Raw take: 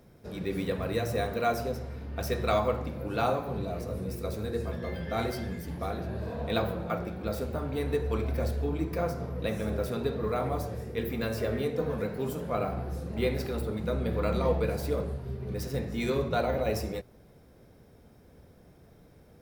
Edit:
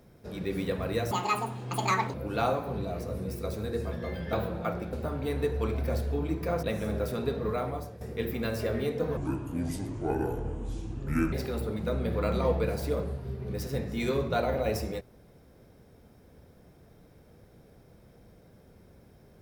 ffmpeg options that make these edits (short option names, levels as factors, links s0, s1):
-filter_complex "[0:a]asplit=9[s0][s1][s2][s3][s4][s5][s6][s7][s8];[s0]atrim=end=1.114[s9];[s1]atrim=start=1.11:end=2.94,asetpts=PTS-STARTPTS,asetrate=78498,aresample=44100[s10];[s2]atrim=start=2.936:end=5.132[s11];[s3]atrim=start=6.578:end=7.182[s12];[s4]atrim=start=7.428:end=9.132[s13];[s5]atrim=start=9.408:end=10.79,asetpts=PTS-STARTPTS,afade=t=out:st=0.862:d=0.52:silence=0.251189[s14];[s6]atrim=start=10.79:end=11.954,asetpts=PTS-STARTPTS,afade=t=in:d=0.004:c=hsin:silence=0.251189[s15];[s7]atrim=start=11.95:end=13.33,asetpts=PTS-STARTPTS,asetrate=28224,aresample=44100[s16];[s8]atrim=start=13.326[s17];[s9][s10]acrossfade=d=0.004:c1=hsin:c2=hsin[s18];[s18][s11]acrossfade=d=0.004:c1=hsin:c2=hsin[s19];[s19][s12]acrossfade=d=0.004:c1=hsin:c2=hsin[s20];[s20][s13]acrossfade=d=0.004:c1=hsin:c2=hsin[s21];[s14][s15]concat=n=2:v=0:a=1[s22];[s21][s22]acrossfade=d=0.004:c1=hsin:c2=hsin[s23];[s23][s16]acrossfade=d=0.004:c1=hsin:c2=hsin[s24];[s24][s17]acrossfade=d=0.004:c1=hsin:c2=hsin"